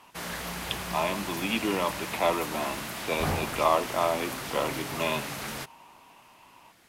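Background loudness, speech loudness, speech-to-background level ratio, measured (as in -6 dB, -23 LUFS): -34.5 LUFS, -30.0 LUFS, 4.5 dB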